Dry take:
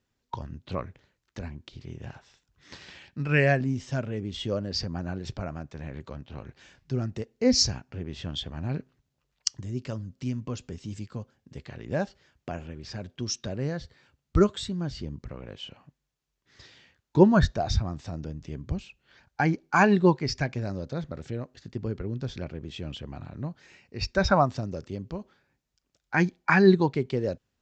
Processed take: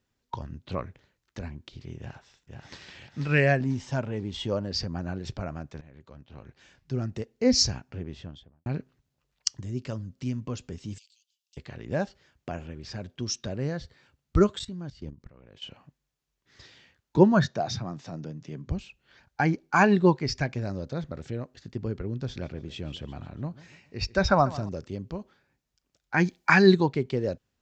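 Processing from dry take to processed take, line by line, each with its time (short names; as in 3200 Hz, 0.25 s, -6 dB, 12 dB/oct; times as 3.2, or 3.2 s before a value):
1.98–2.91 echo throw 0.49 s, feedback 35%, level -4 dB
3.61–4.68 bell 900 Hz +9 dB 0.44 oct
5.81–7.14 fade in, from -16.5 dB
7.89–8.66 studio fade out
10.98–11.57 steep high-pass 2800 Hz 48 dB/oct
14.59–15.62 level quantiser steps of 18 dB
17.17–18.7 elliptic band-pass 130–6900 Hz
22.15–24.69 feedback echo 0.143 s, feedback 42%, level -18 dB
26.25–26.81 high shelf 2800 Hz +10 dB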